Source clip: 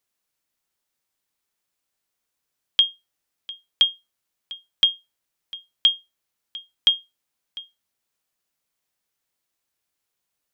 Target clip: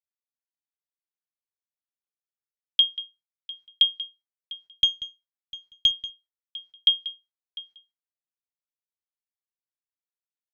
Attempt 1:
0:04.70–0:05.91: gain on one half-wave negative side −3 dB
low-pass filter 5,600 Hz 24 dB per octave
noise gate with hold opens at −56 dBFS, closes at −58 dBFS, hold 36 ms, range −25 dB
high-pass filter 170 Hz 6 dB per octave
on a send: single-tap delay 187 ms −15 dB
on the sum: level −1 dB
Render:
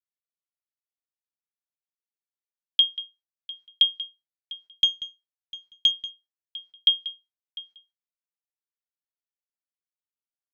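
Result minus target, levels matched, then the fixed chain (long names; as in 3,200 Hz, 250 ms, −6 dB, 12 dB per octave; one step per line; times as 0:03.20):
125 Hz band −4.5 dB
0:04.70–0:05.91: gain on one half-wave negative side −3 dB
low-pass filter 5,600 Hz 24 dB per octave
noise gate with hold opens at −56 dBFS, closes at −58 dBFS, hold 36 ms, range −25 dB
high-pass filter 53 Hz 6 dB per octave
on a send: single-tap delay 187 ms −15 dB
on the sum: level −1 dB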